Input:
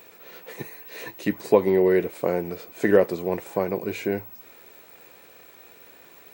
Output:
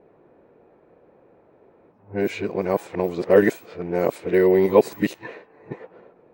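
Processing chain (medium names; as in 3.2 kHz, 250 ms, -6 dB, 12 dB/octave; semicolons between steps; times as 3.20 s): reverse the whole clip; level-controlled noise filter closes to 540 Hz, open at -20.5 dBFS; trim +2.5 dB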